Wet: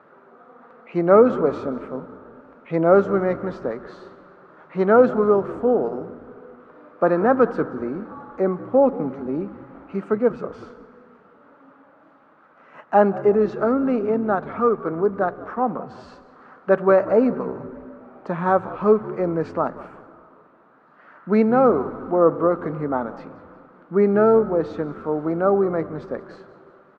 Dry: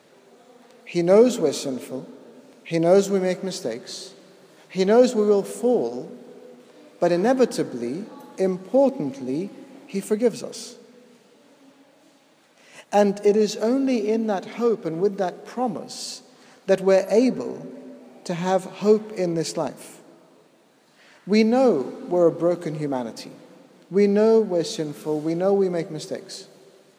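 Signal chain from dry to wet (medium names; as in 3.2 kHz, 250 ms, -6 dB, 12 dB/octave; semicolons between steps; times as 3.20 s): resonant low-pass 1.3 kHz, resonance Q 5.1; on a send: frequency-shifting echo 184 ms, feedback 37%, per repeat -68 Hz, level -18 dB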